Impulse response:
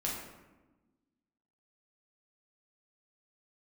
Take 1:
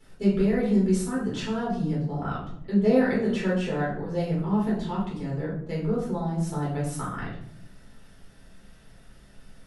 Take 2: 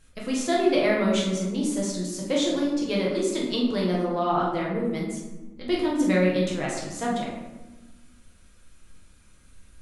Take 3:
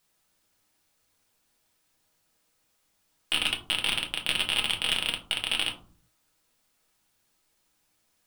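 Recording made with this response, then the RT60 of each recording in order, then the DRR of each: 2; 0.70, 1.1, 0.45 s; -7.5, -4.5, 1.0 dB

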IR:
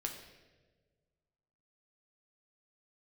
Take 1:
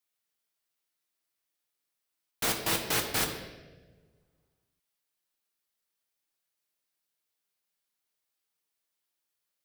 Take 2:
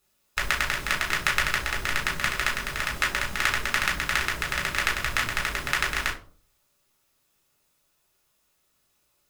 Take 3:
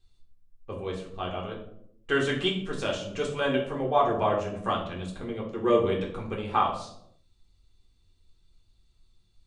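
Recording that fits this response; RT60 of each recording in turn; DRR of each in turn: 1; 1.4, 0.45, 0.75 s; 1.5, -3.0, -2.5 dB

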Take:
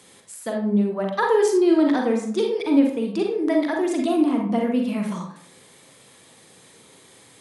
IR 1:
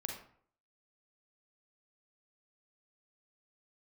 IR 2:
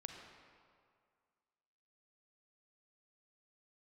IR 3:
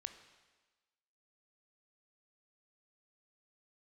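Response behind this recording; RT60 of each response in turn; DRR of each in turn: 1; 0.60, 2.1, 1.3 s; 1.0, 2.5, 8.0 dB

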